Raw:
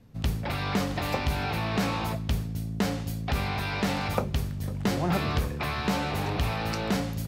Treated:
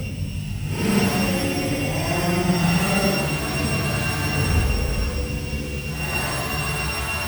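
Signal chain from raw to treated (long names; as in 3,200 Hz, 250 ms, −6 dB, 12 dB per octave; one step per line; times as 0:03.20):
samples sorted by size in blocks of 16 samples
delay with a high-pass on its return 217 ms, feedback 69%, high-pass 3,400 Hz, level −9 dB
extreme stretch with random phases 6.9×, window 0.10 s, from 0:04.72
level +5 dB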